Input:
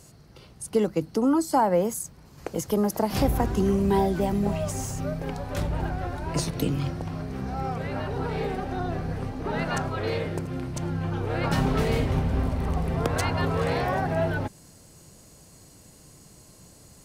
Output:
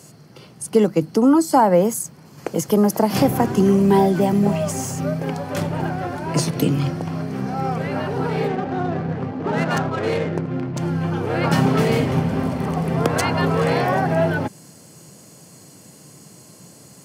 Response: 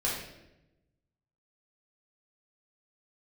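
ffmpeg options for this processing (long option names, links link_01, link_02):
-filter_complex "[0:a]highpass=frequency=130:width=0.5412,highpass=frequency=130:width=1.3066,lowshelf=frequency=190:gain=4,bandreject=frequency=3800:width=13,asettb=1/sr,asplit=3[link_01][link_02][link_03];[link_01]atrim=end=8.484[link_04];[link_02]atrim=start=8.48:end=10.78,asetpts=PTS-STARTPTS,afade=type=in:duration=0.004:curve=qsin,afade=type=out:start_time=2.296:duration=0.004:curve=qsin,adynamicsmooth=sensitivity=7.5:basefreq=1600[link_05];[link_03]atrim=start=10.776[link_06];[link_04][link_05]acrossfade=duration=0.004:curve1=hsin:curve2=qsin[link_07];[link_07][link_06]acrossfade=duration=0.004:curve1=qsin:curve2=hsin,volume=6.5dB"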